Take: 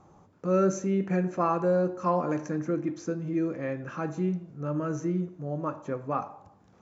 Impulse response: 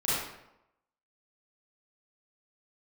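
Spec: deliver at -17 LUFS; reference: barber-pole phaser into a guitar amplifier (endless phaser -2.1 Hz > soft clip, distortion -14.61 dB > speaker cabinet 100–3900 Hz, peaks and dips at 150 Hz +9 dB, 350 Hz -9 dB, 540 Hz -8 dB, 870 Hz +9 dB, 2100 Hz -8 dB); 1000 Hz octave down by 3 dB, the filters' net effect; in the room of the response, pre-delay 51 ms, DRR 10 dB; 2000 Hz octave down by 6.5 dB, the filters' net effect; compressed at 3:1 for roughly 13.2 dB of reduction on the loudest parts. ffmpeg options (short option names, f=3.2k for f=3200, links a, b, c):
-filter_complex "[0:a]equalizer=f=1k:t=o:g=-7,equalizer=f=2k:t=o:g=-3.5,acompressor=threshold=-40dB:ratio=3,asplit=2[a][b];[1:a]atrim=start_sample=2205,adelay=51[c];[b][c]afir=irnorm=-1:irlink=0,volume=-20dB[d];[a][d]amix=inputs=2:normalize=0,asplit=2[e][f];[f]afreqshift=-2.1[g];[e][g]amix=inputs=2:normalize=1,asoftclip=threshold=-38.5dB,highpass=100,equalizer=f=150:t=q:w=4:g=9,equalizer=f=350:t=q:w=4:g=-9,equalizer=f=540:t=q:w=4:g=-8,equalizer=f=870:t=q:w=4:g=9,equalizer=f=2.1k:t=q:w=4:g=-8,lowpass=f=3.9k:w=0.5412,lowpass=f=3.9k:w=1.3066,volume=28dB"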